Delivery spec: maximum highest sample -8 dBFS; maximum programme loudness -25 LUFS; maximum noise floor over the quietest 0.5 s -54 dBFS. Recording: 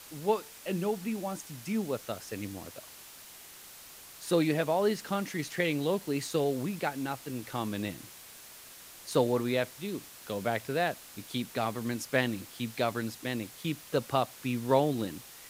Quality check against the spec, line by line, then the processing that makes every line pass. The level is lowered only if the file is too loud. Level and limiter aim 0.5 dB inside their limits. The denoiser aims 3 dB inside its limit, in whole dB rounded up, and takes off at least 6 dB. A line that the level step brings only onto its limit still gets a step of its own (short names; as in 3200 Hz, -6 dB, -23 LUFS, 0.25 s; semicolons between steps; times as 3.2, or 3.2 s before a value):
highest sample -10.5 dBFS: OK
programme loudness -32.0 LUFS: OK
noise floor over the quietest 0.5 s -50 dBFS: fail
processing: denoiser 7 dB, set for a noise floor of -50 dBFS